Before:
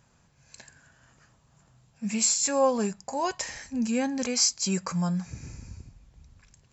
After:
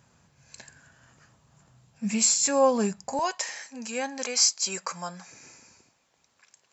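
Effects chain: high-pass 67 Hz 12 dB/octave, from 3.19 s 530 Hz; trim +2 dB

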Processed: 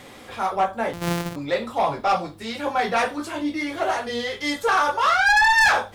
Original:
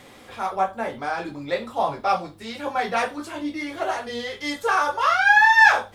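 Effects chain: 0.93–1.36 s: sorted samples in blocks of 256 samples; saturation -16.5 dBFS, distortion -9 dB; trim +3.5 dB

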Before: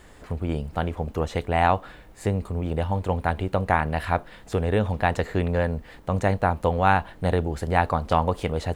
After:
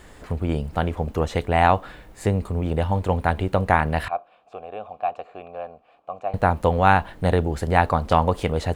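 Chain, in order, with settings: 4.08–6.34 s: vowel filter a; trim +3 dB

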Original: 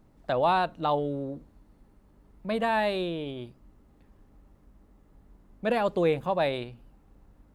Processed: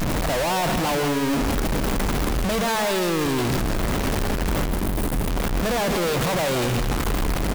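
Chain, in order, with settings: one-bit comparator; time-frequency box 4.69–5.28 s, 440–8200 Hz -13 dB; waveshaping leveller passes 5; on a send: delay 164 ms -8.5 dB; on the sum: trim +2.5 dB

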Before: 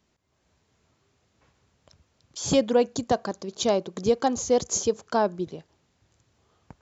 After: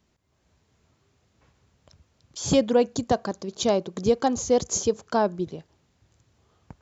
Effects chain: bass shelf 190 Hz +5 dB

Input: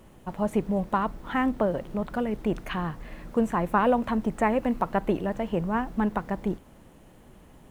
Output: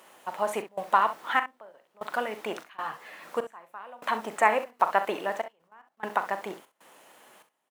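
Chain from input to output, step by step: high-pass 780 Hz 12 dB/octave; 5.46–6.00 s: level held to a coarse grid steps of 17 dB; trance gate "xxxx.xxxx...." 97 bpm -24 dB; early reflections 41 ms -12.5 dB, 65 ms -13 dB; 2.77–3.23 s: three-phase chorus; trim +6.5 dB

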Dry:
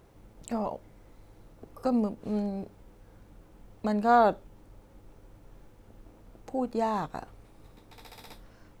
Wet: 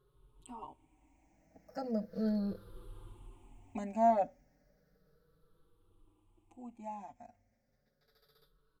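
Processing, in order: drifting ripple filter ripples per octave 0.63, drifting -0.34 Hz, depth 19 dB; Doppler pass-by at 2.80 s, 16 m/s, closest 6.8 m; endless flanger 5.1 ms +0.26 Hz

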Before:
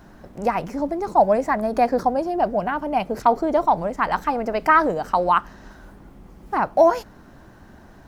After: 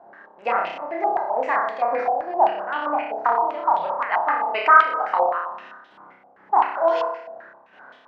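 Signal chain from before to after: high-pass 560 Hz 12 dB/octave; compression 4:1, threshold -20 dBFS, peak gain reduction 8.5 dB; square tremolo 2.2 Hz, depth 65%, duty 50%; flutter echo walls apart 5.2 m, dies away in 0.86 s; step-sequenced low-pass 7.7 Hz 740–3300 Hz; trim -1.5 dB

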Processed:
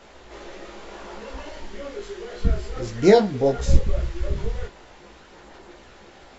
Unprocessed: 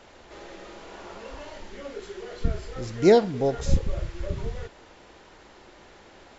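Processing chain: chorus voices 6, 1.5 Hz, delay 17 ms, depth 3 ms; trim +6 dB

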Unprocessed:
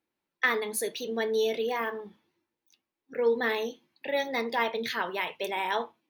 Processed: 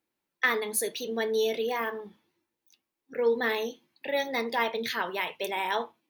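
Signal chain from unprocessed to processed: treble shelf 6.7 kHz +5 dB

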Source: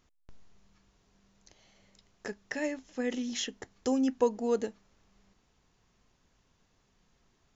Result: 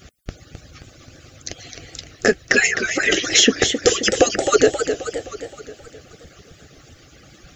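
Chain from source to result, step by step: harmonic-percussive separation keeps percussive; Butterworth band-stop 960 Hz, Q 2.4; loudness maximiser +30 dB; modulated delay 263 ms, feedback 55%, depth 150 cents, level -8 dB; trim -1.5 dB

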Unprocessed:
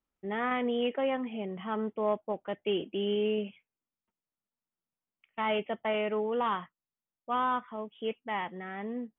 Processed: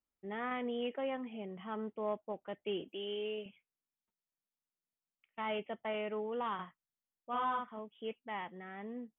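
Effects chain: 2.88–3.46 s: tone controls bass -14 dB, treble +11 dB; 6.54–7.79 s: doubling 50 ms -2.5 dB; trim -7.5 dB

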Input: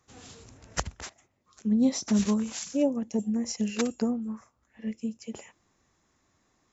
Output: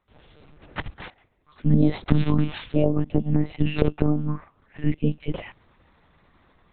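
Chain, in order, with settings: level rider gain up to 16 dB; peak limiter -8.5 dBFS, peak gain reduction 7 dB; monotone LPC vocoder at 8 kHz 150 Hz; trim -3.5 dB

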